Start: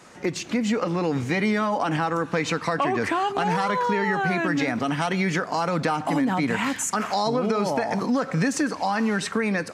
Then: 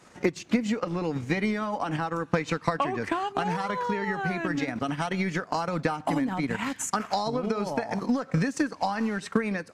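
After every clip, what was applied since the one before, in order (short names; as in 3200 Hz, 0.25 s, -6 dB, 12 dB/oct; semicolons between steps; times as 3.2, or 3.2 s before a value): transient shaper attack +9 dB, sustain -8 dB; low shelf 100 Hz +6.5 dB; gain -6.5 dB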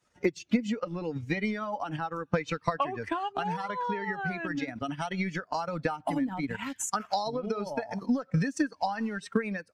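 per-bin expansion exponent 1.5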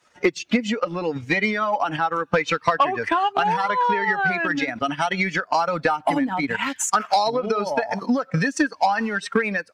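overdrive pedal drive 14 dB, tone 4500 Hz, clips at -11.5 dBFS; gain +5.5 dB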